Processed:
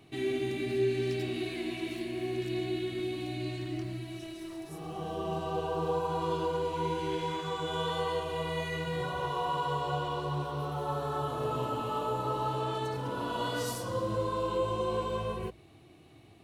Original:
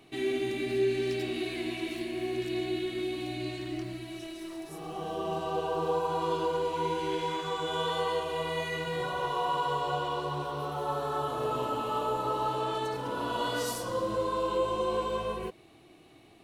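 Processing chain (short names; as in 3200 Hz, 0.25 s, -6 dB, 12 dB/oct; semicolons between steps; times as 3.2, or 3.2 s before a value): bell 100 Hz +11.5 dB 1.4 oct; notches 60/120 Hz; gain -2.5 dB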